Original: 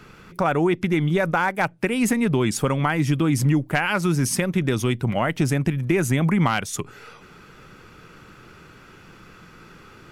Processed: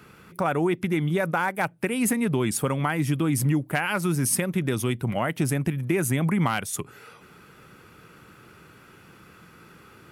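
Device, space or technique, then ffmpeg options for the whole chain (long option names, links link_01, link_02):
budget condenser microphone: -af "highpass=63,highshelf=frequency=8000:width_type=q:width=1.5:gain=6.5,volume=-3.5dB"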